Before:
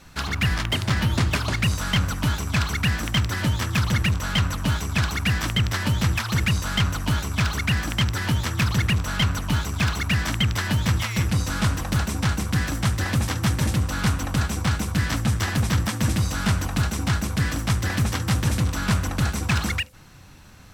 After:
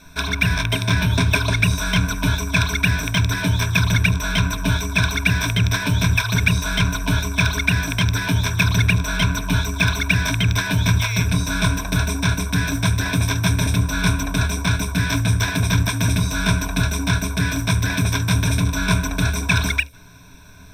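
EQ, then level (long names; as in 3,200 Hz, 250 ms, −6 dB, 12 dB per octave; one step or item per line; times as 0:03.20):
dynamic equaliser 2,900 Hz, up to +4 dB, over −37 dBFS, Q 1
EQ curve with evenly spaced ripples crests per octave 1.6, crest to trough 16 dB
0.0 dB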